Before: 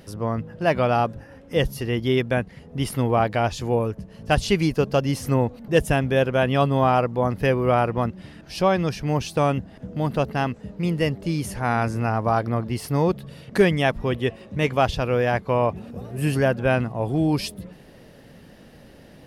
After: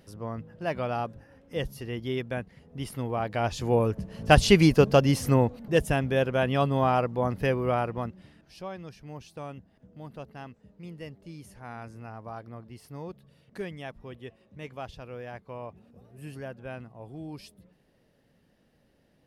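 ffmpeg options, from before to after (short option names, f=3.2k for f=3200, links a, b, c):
-af "volume=2.5dB,afade=t=in:st=3.21:d=1.03:silence=0.237137,afade=t=out:st=4.74:d=1.09:silence=0.421697,afade=t=out:st=7.41:d=0.8:silence=0.501187,afade=t=out:st=8.21:d=0.41:silence=0.398107"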